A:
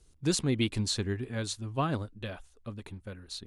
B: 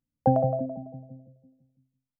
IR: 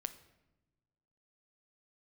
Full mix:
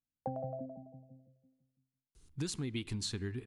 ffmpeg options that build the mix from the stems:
-filter_complex "[0:a]equalizer=frequency=580:width_type=o:width=0.53:gain=-9.5,adelay=2150,volume=-3dB,asplit=2[link_01][link_02];[link_02]volume=-7.5dB[link_03];[1:a]volume=-12dB[link_04];[2:a]atrim=start_sample=2205[link_05];[link_03][link_05]afir=irnorm=-1:irlink=0[link_06];[link_01][link_04][link_06]amix=inputs=3:normalize=0,acompressor=threshold=-35dB:ratio=5"

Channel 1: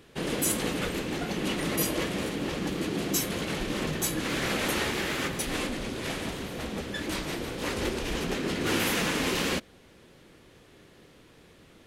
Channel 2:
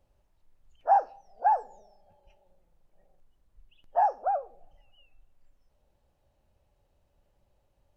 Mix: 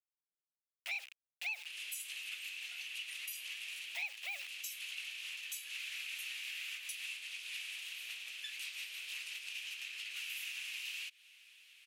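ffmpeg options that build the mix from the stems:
ffmpeg -i stem1.wav -i stem2.wav -filter_complex "[0:a]acompressor=threshold=-34dB:ratio=6,aemphasis=mode=production:type=cd,adelay=1500,volume=-9dB[link_01];[1:a]aemphasis=mode=reproduction:type=75fm,acrusher=bits=6:mix=0:aa=0.000001,asoftclip=type=tanh:threshold=-28dB,volume=1dB[link_02];[link_01][link_02]amix=inputs=2:normalize=0,highpass=frequency=2600:width_type=q:width=5.6,acompressor=threshold=-41dB:ratio=3" out.wav

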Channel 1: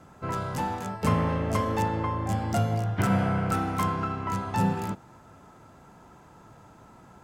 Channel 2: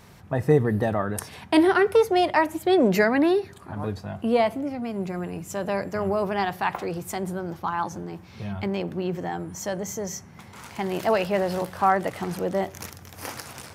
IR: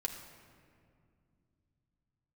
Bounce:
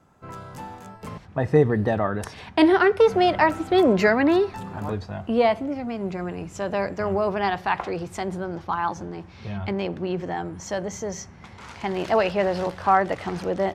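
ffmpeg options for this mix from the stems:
-filter_complex "[0:a]alimiter=limit=-17.5dB:level=0:latency=1:release=278,volume=-7.5dB,asplit=3[link_01][link_02][link_03];[link_01]atrim=end=1.18,asetpts=PTS-STARTPTS,afade=type=out:start_time=1.176:duration=0.004:curve=hsin[link_04];[link_02]atrim=start=1.18:end=3.07,asetpts=PTS-STARTPTS,volume=0[link_05];[link_03]atrim=start=3.07,asetpts=PTS-STARTPTS,afade=type=in:duration=0.004:curve=hsin[link_06];[link_04][link_05][link_06]concat=n=3:v=0:a=1[link_07];[1:a]lowpass=5500,adelay=1050,volume=2dB[link_08];[link_07][link_08]amix=inputs=2:normalize=0,asubboost=boost=4:cutoff=60"

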